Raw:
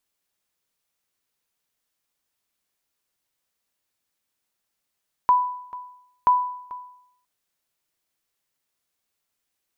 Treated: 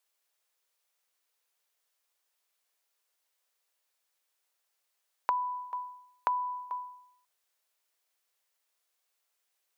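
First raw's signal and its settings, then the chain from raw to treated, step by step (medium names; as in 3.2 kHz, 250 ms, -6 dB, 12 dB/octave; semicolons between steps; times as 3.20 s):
sonar ping 993 Hz, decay 0.73 s, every 0.98 s, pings 2, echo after 0.44 s, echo -19.5 dB -10.5 dBFS
high-pass 430 Hz 24 dB/octave; compression 10:1, threshold -27 dBFS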